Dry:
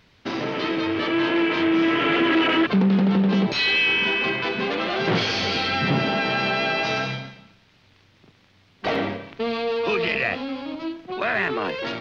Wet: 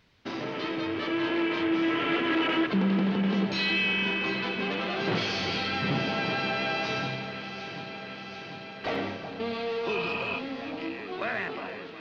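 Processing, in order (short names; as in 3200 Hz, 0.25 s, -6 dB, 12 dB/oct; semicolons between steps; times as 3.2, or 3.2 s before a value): ending faded out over 0.78 s; echo with dull and thin repeats by turns 0.371 s, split 1600 Hz, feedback 86%, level -10 dB; spectral repair 9.97–10.36, 590–3300 Hz before; gain -7 dB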